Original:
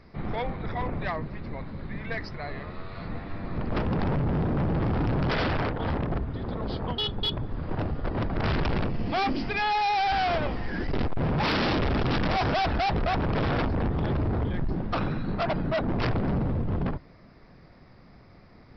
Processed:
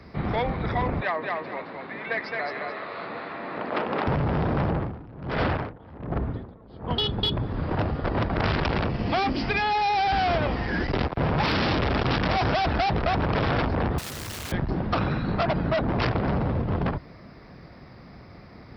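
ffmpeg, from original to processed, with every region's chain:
-filter_complex "[0:a]asettb=1/sr,asplit=3[s0][s1][s2];[s0]atrim=end=1.004[s3];[s1]atrim=start=1:end=4.07,asetpts=PTS-STARTPTS,afade=t=in:d=0.004:c=qsin,afade=t=out:st=3.066:d=0.004:c=qsin,highpass=440,lowpass=3600,aecho=1:1:217|434|651|868:0.631|0.17|0.046|0.0124,atrim=end_sample=135387[s4];[s2]atrim=start=4.066[s5];[s3][s4]acrossfade=d=0.004:c1=hsin:c2=qsin[s6];[s6][s5]acrossfade=d=0.004:c1=qsin:c2=hsin,asettb=1/sr,asplit=3[s7][s8][s9];[s7]atrim=end=4.704[s10];[s8]atrim=start=4.7:end=6.91,asetpts=PTS-STARTPTS,afade=t=in:d=0.004:c=qsin,afade=t=out:st=2.206:d=0.004:c=qsin,lowpass=f=1700:p=1,aeval=exprs='val(0)*pow(10,-25*(0.5-0.5*cos(2*PI*1.3*n/s))/20)':c=same[s11];[s9]atrim=start=6.906[s12];[s10][s11]acrossfade=d=0.004:c1=hsin:c2=qsin[s13];[s13][s12]acrossfade=d=0.004:c1=qsin:c2=hsin,asettb=1/sr,asplit=3[s14][s15][s16];[s14]atrim=end=13.984[s17];[s15]atrim=start=13.98:end=14.52,asetpts=PTS-STARTPTS,afade=t=in:d=0.004:c=qsin,afade=t=out:st=0.536:d=0.004:c=qsin,highshelf=f=3300:g=-10.5,aeval=exprs='(mod(70.8*val(0)+1,2)-1)/70.8':c=same[s18];[s16]atrim=start=14.516[s19];[s17][s18]acrossfade=d=0.004:c1=hsin:c2=qsin[s20];[s20][s19]acrossfade=d=0.004:c1=qsin:c2=hsin,highpass=44,acrossover=split=140|470[s21][s22][s23];[s21]acompressor=threshold=0.02:ratio=4[s24];[s22]acompressor=threshold=0.0141:ratio=4[s25];[s23]acompressor=threshold=0.0282:ratio=4[s26];[s24][s25][s26]amix=inputs=3:normalize=0,volume=2.24"

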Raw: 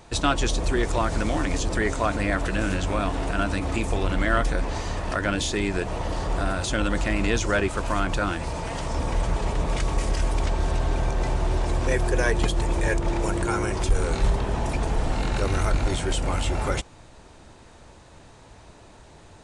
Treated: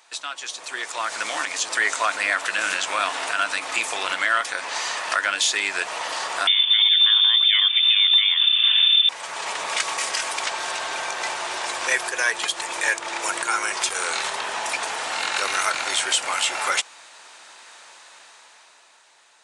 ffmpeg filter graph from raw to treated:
-filter_complex "[0:a]asettb=1/sr,asplit=3[s0][s1][s2];[s0]atrim=end=6.474[s3];[s1]atrim=start=6.47:end=9.09,asetpts=PTS-STARTPTS,afade=t=in:d=0.004:c=qsin,afade=t=out:st=2.616:d=0.004:c=qsin,lowshelf=f=240:g=9,lowpass=f=3100:t=q:w=0.5098,lowpass=f=3100:t=q:w=0.6013,lowpass=f=3100:t=q:w=0.9,lowpass=f=3100:t=q:w=2.563,afreqshift=-3600[s4];[s2]atrim=start=9.086[s5];[s3][s4]acrossfade=d=0.004:c1=hsin:c2=qsin[s6];[s6][s5]acrossfade=d=0.004:c1=qsin:c2=hsin,highpass=1300,alimiter=limit=0.1:level=0:latency=1:release=478,dynaudnorm=f=110:g=21:m=3.35,volume=1.12"

